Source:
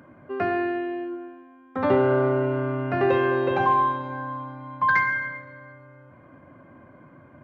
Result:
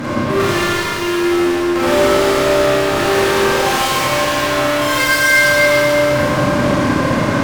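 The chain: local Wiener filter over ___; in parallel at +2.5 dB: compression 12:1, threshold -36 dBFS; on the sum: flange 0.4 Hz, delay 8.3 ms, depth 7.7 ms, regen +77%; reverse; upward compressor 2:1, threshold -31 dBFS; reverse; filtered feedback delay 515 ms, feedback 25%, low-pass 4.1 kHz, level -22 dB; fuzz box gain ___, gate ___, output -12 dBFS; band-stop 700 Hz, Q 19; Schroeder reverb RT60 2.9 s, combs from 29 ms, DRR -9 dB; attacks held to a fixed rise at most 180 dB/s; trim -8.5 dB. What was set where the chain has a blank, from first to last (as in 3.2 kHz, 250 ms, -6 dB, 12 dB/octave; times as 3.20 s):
9 samples, 46 dB, -55 dBFS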